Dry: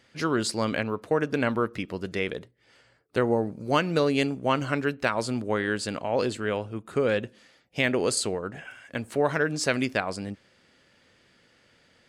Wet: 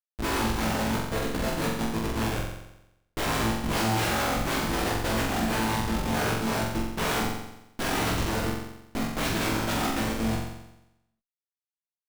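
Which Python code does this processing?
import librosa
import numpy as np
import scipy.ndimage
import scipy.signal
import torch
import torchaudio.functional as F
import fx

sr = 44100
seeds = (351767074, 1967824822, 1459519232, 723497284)

y = fx.chord_vocoder(x, sr, chord='minor triad', root=57)
y = fx.highpass(y, sr, hz=1100.0, slope=6, at=(1.0, 1.62))
y = (np.mod(10.0 ** (23.0 / 20.0) * y + 1.0, 2.0) - 1.0) / 10.0 ** (23.0 / 20.0)
y = fx.tilt_eq(y, sr, slope=1.5, at=(6.06, 6.93))
y = fx.schmitt(y, sr, flips_db=-33.5)
y = fx.doubler(y, sr, ms=18.0, db=-4.0)
y = fx.room_flutter(y, sr, wall_m=7.6, rt60_s=0.88)
y = y * 10.0 ** (2.0 / 20.0)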